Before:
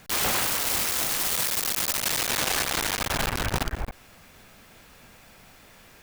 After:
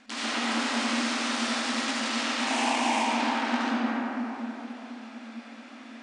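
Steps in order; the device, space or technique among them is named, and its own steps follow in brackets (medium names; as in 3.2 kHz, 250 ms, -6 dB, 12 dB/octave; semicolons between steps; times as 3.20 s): FFT band-pass 220–10000 Hz; jukebox (low-pass 5.2 kHz 12 dB/octave; resonant low shelf 290 Hz +9.5 dB, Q 3; compression, threshold -30 dBFS, peak gain reduction 9.5 dB); 2.40–3.07 s: FFT filter 570 Hz 0 dB, 910 Hz +14 dB, 1.4 kHz -13 dB, 2.4 kHz +5 dB, 4 kHz -3 dB, 8 kHz +7 dB; algorithmic reverb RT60 3.8 s, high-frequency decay 0.35×, pre-delay 35 ms, DRR -9.5 dB; trim -3.5 dB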